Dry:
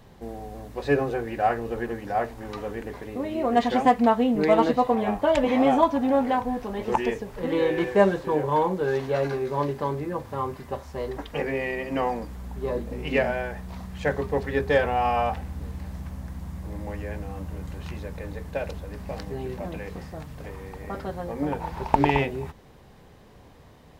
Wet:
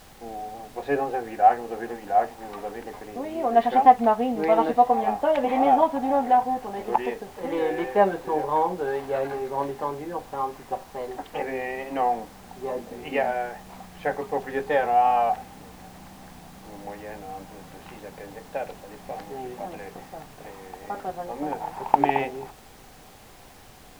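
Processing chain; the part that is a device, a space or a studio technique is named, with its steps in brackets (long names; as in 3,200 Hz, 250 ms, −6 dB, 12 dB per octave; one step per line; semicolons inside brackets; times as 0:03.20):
horn gramophone (band-pass filter 230–3,100 Hz; parametric band 770 Hz +11 dB 0.26 octaves; tape wow and flutter; pink noise bed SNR 24 dB)
level −2.5 dB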